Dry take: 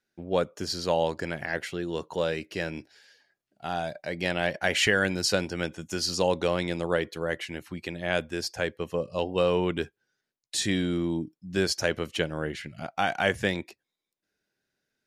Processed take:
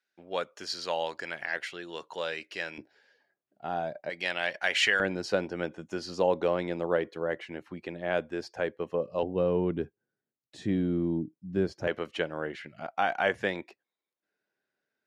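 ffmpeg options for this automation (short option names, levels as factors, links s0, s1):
-af "asetnsamples=n=441:p=0,asendcmd='2.78 bandpass f 500;4.1 bandpass f 2200;5 bandpass f 580;9.23 bandpass f 220;11.87 bandpass f 870',bandpass=f=2200:t=q:w=0.52:csg=0"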